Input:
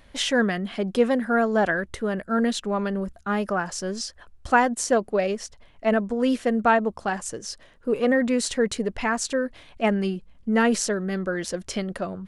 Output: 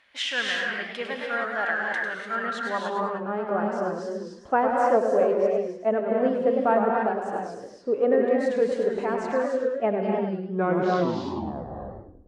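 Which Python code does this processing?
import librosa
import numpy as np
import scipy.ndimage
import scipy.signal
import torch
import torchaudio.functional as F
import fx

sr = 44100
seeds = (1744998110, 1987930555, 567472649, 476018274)

y = fx.tape_stop_end(x, sr, length_s=2.03)
y = fx.filter_sweep_bandpass(y, sr, from_hz=2200.0, to_hz=530.0, start_s=2.13, end_s=3.26, q=1.1)
y = fx.rev_gated(y, sr, seeds[0], gate_ms=320, shape='rising', drr_db=0.0)
y = fx.echo_warbled(y, sr, ms=104, feedback_pct=34, rate_hz=2.8, cents=168, wet_db=-7.0)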